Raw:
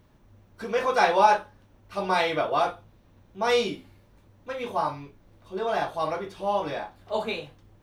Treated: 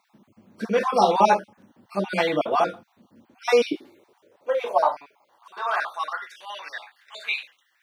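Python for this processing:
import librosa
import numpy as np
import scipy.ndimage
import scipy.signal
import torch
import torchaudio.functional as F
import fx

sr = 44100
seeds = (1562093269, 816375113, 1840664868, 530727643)

y = fx.spec_dropout(x, sr, seeds[0], share_pct=31)
y = fx.filter_sweep_highpass(y, sr, from_hz=210.0, to_hz=1900.0, start_s=3.08, end_s=6.51, q=2.9)
y = y * librosa.db_to_amplitude(2.5)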